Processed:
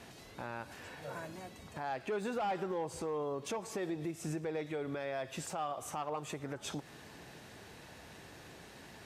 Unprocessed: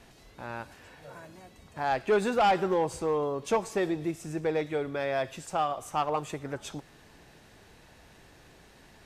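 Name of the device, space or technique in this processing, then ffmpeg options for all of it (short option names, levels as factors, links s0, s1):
podcast mastering chain: -af "highpass=81,deesser=0.95,acompressor=threshold=0.0158:ratio=3,alimiter=level_in=2.51:limit=0.0631:level=0:latency=1:release=165,volume=0.398,volume=1.5" -ar 48000 -c:a libmp3lame -b:a 96k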